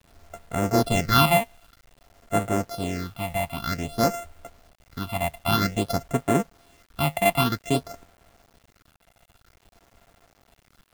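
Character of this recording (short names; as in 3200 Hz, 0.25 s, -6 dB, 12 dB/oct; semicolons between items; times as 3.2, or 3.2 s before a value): a buzz of ramps at a fixed pitch in blocks of 64 samples; phasing stages 6, 0.52 Hz, lowest notch 370–4800 Hz; a quantiser's noise floor 10-bit, dither none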